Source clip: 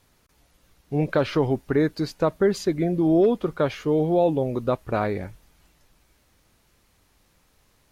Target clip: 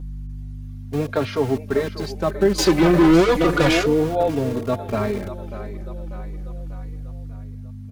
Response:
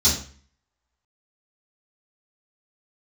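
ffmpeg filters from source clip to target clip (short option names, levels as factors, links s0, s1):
-filter_complex "[0:a]dynaudnorm=f=140:g=13:m=1.5,asplit=2[s0][s1];[s1]aecho=0:1:592|1184|1776|2368|2960:0.251|0.131|0.0679|0.0353|0.0184[s2];[s0][s2]amix=inputs=2:normalize=0,asettb=1/sr,asplit=3[s3][s4][s5];[s3]atrim=end=2.584[s6];[s4]atrim=start=2.58:end=3.86,asetpts=PTS-STARTPTS,afade=t=in:d=0.004:c=qsin,afade=t=out:st=1.276:d=0.004:c=qsin,asplit=2[s7][s8];[s8]highpass=f=720:p=1,volume=25.1,asoftclip=type=tanh:threshold=0.473[s9];[s7][s9]amix=inputs=2:normalize=0,lowpass=f=6400:p=1,volume=0.501[s10];[s5]atrim=start=3.856[s11];[s6][s10]acrossfade=d=0.004:c1=hsin:c2=qsin[s12];[s12][s11]acrossfade=d=0.004:c1=qsin:c2=hsin,acrossover=split=170|1100[s13][s14][s15];[s13]acrusher=bits=4:mix=0:aa=0.000001[s16];[s16][s14][s15]amix=inputs=3:normalize=0,aeval=exprs='val(0)+0.0398*(sin(2*PI*50*n/s)+sin(2*PI*2*50*n/s)/2+sin(2*PI*3*50*n/s)/3+sin(2*PI*4*50*n/s)/4+sin(2*PI*5*50*n/s)/5)':c=same,asplit=2[s17][s18];[s18]adelay=3.6,afreqshift=-0.3[s19];[s17][s19]amix=inputs=2:normalize=1"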